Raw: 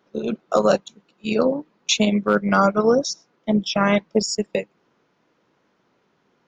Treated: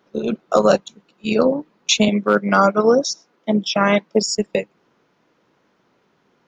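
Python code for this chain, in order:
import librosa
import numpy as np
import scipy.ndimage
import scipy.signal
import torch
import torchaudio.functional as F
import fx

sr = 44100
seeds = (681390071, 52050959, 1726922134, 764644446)

y = fx.highpass(x, sr, hz=190.0, slope=12, at=(2.08, 4.26))
y = y * 10.0 ** (3.0 / 20.0)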